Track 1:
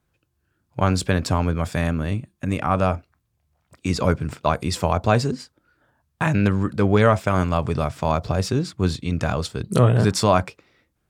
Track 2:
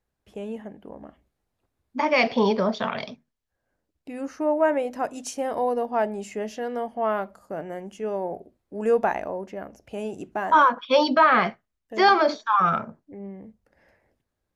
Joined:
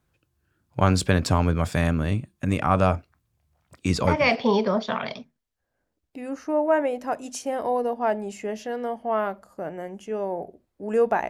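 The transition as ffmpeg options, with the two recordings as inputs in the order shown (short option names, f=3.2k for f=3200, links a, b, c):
-filter_complex "[0:a]apad=whole_dur=11.29,atrim=end=11.29,atrim=end=4.37,asetpts=PTS-STARTPTS[a];[1:a]atrim=start=1.71:end=9.21,asetpts=PTS-STARTPTS[b];[a][b]acrossfade=d=0.58:c1=qsin:c2=qsin"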